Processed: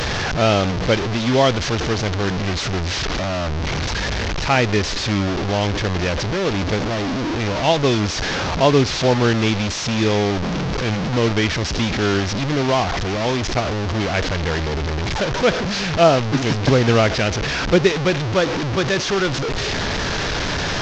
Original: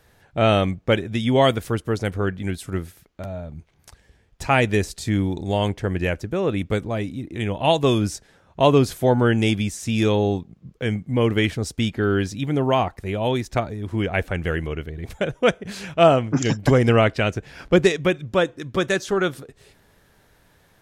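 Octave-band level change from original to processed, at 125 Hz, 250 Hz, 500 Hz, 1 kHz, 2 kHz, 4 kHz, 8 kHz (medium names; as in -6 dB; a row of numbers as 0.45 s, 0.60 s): +3.0 dB, +2.0 dB, +1.5 dB, +3.0 dB, +5.0 dB, +7.5 dB, +8.0 dB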